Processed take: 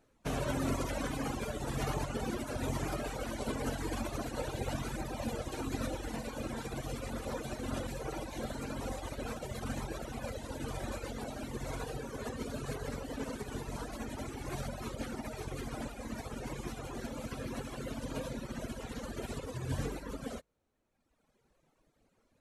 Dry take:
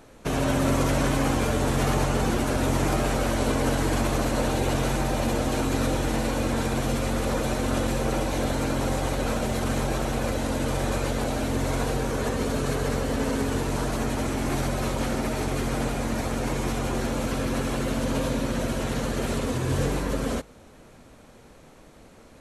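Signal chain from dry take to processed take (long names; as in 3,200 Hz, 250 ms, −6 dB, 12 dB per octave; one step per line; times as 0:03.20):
flanger 0.2 Hz, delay 0.4 ms, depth 8.2 ms, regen −72%
reverb reduction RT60 1.8 s
expander for the loud parts 1.5 to 1, over −52 dBFS
level −2.5 dB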